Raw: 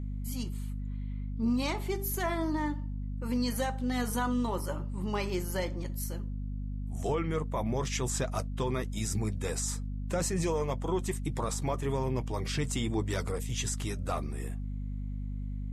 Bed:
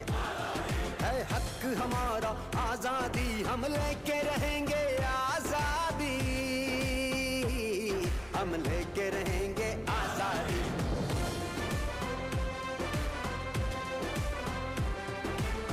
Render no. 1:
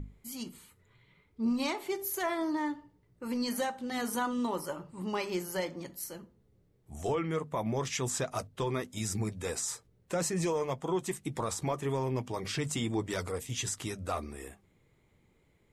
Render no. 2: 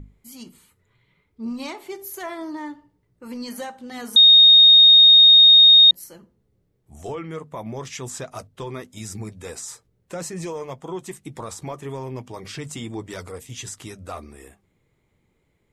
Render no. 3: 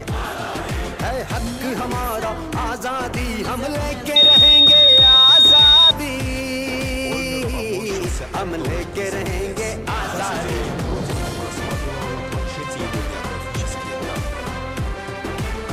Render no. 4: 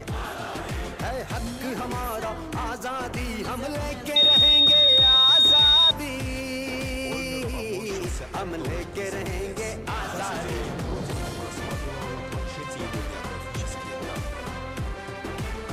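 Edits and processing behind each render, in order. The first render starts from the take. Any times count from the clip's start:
hum notches 50/100/150/200/250 Hz
4.16–5.91 s: bleep 3.71 kHz -7 dBFS
add bed +8.5 dB
trim -6.5 dB

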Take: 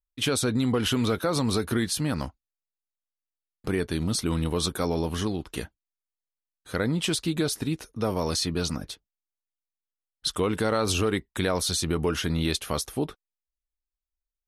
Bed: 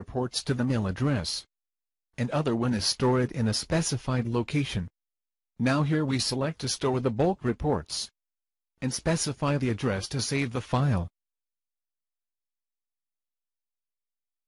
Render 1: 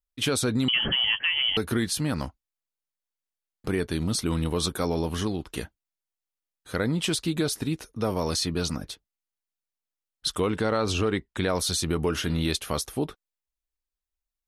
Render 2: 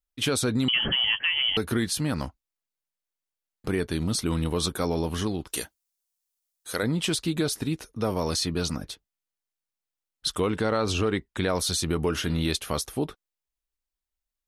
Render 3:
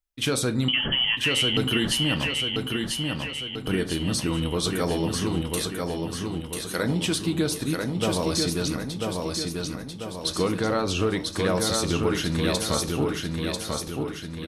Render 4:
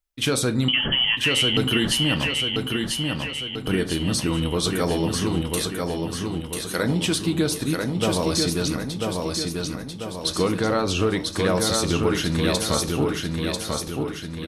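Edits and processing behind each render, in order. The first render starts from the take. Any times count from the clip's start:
0.68–1.57 s: frequency inversion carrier 3.2 kHz; 10.50–11.49 s: distance through air 66 m; 12.08–12.49 s: de-hum 100.3 Hz, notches 37
5.47–6.83 s: tone controls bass -10 dB, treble +12 dB
feedback delay 992 ms, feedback 51%, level -3.5 dB; simulated room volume 340 m³, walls furnished, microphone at 0.63 m
trim +2.5 dB

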